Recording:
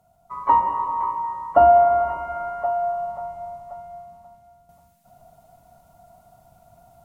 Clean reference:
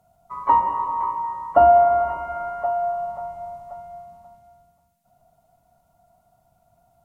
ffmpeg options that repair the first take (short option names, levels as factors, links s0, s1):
-af "asetnsamples=n=441:p=0,asendcmd='4.69 volume volume -9dB',volume=1"